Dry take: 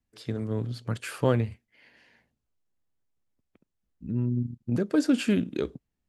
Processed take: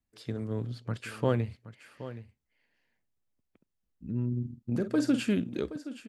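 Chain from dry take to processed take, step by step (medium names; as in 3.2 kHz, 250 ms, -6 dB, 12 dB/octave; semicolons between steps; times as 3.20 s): 0.73–1.28 s: treble shelf 6 kHz -> 9.9 kHz -9 dB; 4.28–5.23 s: doubling 47 ms -10 dB; delay 772 ms -14 dB; trim -3.5 dB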